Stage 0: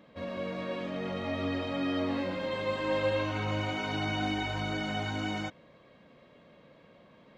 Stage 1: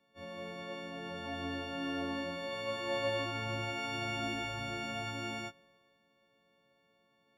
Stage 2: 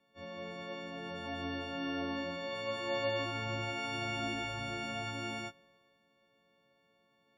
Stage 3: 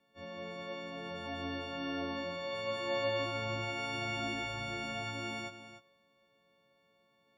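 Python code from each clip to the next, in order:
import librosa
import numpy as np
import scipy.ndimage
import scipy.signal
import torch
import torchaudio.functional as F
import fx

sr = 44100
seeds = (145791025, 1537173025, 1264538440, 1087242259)

y1 = fx.freq_snap(x, sr, grid_st=4)
y1 = fx.band_widen(y1, sr, depth_pct=40)
y1 = F.gain(torch.from_numpy(y1), -7.0).numpy()
y2 = fx.spec_gate(y1, sr, threshold_db=-30, keep='strong')
y3 = y2 + 10.0 ** (-12.0 / 20.0) * np.pad(y2, (int(294 * sr / 1000.0), 0))[:len(y2)]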